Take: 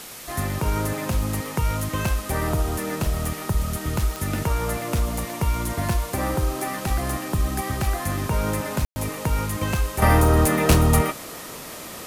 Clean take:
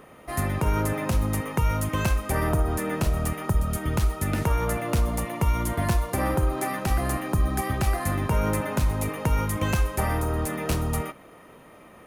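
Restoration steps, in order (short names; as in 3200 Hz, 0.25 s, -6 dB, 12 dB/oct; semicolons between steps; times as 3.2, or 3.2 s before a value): de-click; room tone fill 8.85–8.96; noise print and reduce 8 dB; gain correction -9.5 dB, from 10.02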